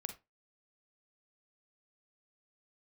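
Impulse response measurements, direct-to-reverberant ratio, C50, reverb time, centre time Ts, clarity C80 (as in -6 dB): 7.0 dB, 10.5 dB, 0.25 s, 10 ms, 19.0 dB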